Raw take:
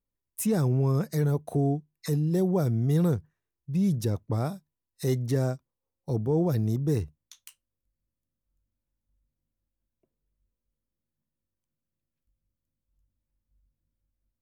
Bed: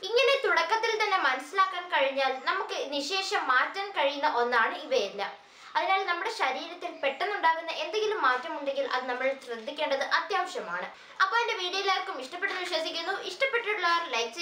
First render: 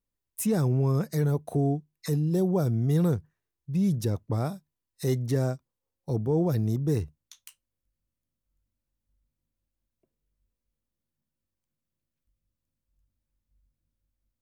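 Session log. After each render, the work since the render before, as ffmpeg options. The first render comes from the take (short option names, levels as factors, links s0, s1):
-filter_complex "[0:a]asettb=1/sr,asplit=3[s0][s1][s2];[s0]atrim=end=2.224[s3];[s1]atrim=start=2.22:end=2.74,asetpts=PTS-STARTPTS,afade=t=in:d=0.004:c=qsin,afade=t=out:st=0.516:d=0.004:c=qsin,equalizer=f=2000:w=6.6:g=-10.5[s4];[s2]atrim=start=2.736[s5];[s3][s4]acrossfade=d=0.004:c1=hsin:c2=qsin[s6];[s6][s5]acrossfade=d=0.004:c1=qsin:c2=hsin"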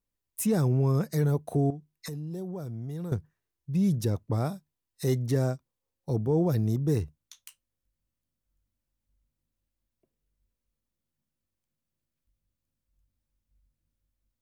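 -filter_complex "[0:a]asettb=1/sr,asplit=3[s0][s1][s2];[s0]atrim=end=1.704[s3];[s1]atrim=start=1.7:end=3.12,asetpts=PTS-STARTPTS,afade=t=in:d=0.004:c=qsin,afade=t=out:st=1.416:d=0.004:c=qsin,acompressor=threshold=0.0178:ratio=4:attack=3.2:release=140:knee=1:detection=peak[s4];[s2]atrim=start=3.116[s5];[s3][s4]acrossfade=d=0.004:c1=hsin:c2=qsin[s6];[s6][s5]acrossfade=d=0.004:c1=qsin:c2=hsin"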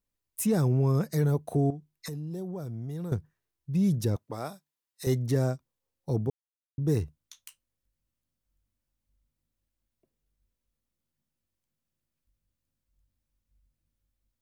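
-filter_complex "[0:a]asettb=1/sr,asplit=3[s0][s1][s2];[s0]atrim=end=4.164[s3];[s1]atrim=start=4.16:end=5.07,asetpts=PTS-STARTPTS,afade=t=in:d=0.004:c=qsin,afade=t=out:st=0.906:d=0.004:c=qsin,highpass=f=640:p=1[s4];[s2]atrim=start=5.066[s5];[s3][s4]acrossfade=d=0.004:c1=hsin:c2=qsin[s6];[s6][s5]acrossfade=d=0.004:c1=qsin:c2=hsin,asplit=3[s7][s8][s9];[s7]atrim=end=6.3,asetpts=PTS-STARTPTS,afade=t=out:st=6.296:d=0.004:c=hsin[s10];[s8]atrim=start=6.3:end=6.78,asetpts=PTS-STARTPTS,volume=0[s11];[s9]atrim=start=6.78,asetpts=PTS-STARTPTS,afade=t=in:d=0.004:c=hsin[s12];[s10][s11][s12]concat=n=3:v=0:a=1"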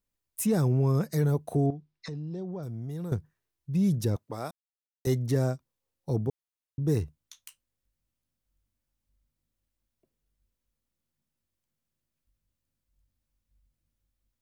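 -filter_complex "[0:a]asettb=1/sr,asplit=3[s0][s1][s2];[s0]atrim=end=1.664[s3];[s1]atrim=start=1.66:end=2.63,asetpts=PTS-STARTPTS,afade=t=in:d=0.004:c=qsin,afade=t=out:st=0.966:d=0.004:c=qsin,lowpass=f=5300:w=0.5412,lowpass=f=5300:w=1.3066[s4];[s2]atrim=start=2.626[s5];[s3][s4]acrossfade=d=0.004:c1=hsin:c2=qsin[s6];[s6][s5]acrossfade=d=0.004:c1=qsin:c2=hsin,asplit=3[s7][s8][s9];[s7]atrim=end=4.51,asetpts=PTS-STARTPTS,afade=t=out:st=4.506:d=0.004:c=hsin[s10];[s8]atrim=start=4.51:end=5.05,asetpts=PTS-STARTPTS,volume=0[s11];[s9]atrim=start=5.05,asetpts=PTS-STARTPTS,afade=t=in:d=0.004:c=hsin[s12];[s10][s11][s12]concat=n=3:v=0:a=1"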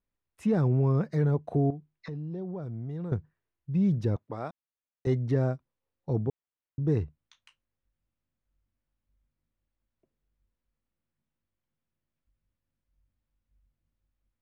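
-af "lowpass=2500"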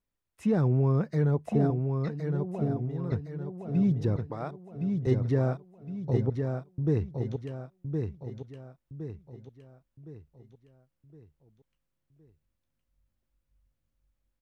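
-af "aecho=1:1:1064|2128|3192|4256|5320:0.562|0.236|0.0992|0.0417|0.0175"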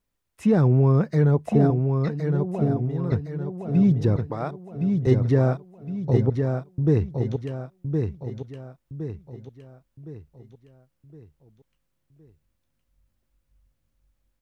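-af "volume=2.11"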